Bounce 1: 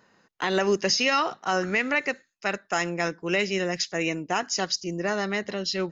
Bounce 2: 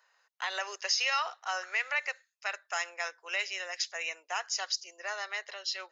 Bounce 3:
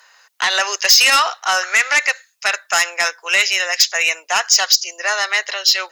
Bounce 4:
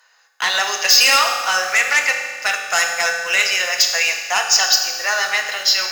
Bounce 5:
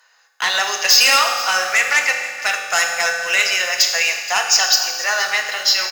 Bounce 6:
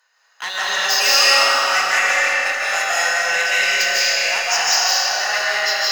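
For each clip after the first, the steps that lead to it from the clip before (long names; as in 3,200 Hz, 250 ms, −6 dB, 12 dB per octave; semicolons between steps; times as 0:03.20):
Bessel high-pass filter 970 Hz, order 8; level −4.5 dB
sine wavefolder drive 8 dB, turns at −15.5 dBFS; spectral tilt +2 dB per octave; level +5.5 dB
in parallel at −3 dB: bit reduction 5 bits; on the sum: convolution reverb RT60 1.6 s, pre-delay 3 ms, DRR 2 dB; level −7 dB
single-tap delay 474 ms −16.5 dB
comb and all-pass reverb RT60 3.2 s, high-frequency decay 0.7×, pre-delay 115 ms, DRR −8 dB; level −8 dB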